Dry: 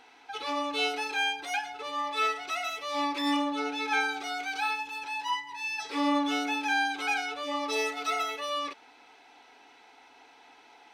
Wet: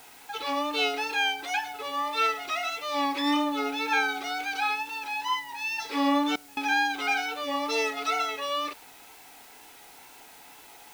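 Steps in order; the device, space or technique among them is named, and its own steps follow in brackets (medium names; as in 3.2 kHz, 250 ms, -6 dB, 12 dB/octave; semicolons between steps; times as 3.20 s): worn cassette (low-pass 7.9 kHz; wow and flutter; level dips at 6.36 s, 207 ms -25 dB; white noise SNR 23 dB); trim +2.5 dB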